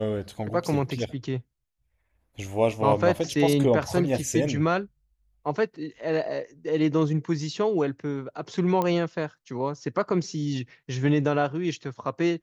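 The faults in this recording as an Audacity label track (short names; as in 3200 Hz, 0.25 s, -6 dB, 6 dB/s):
8.820000	8.820000	pop -14 dBFS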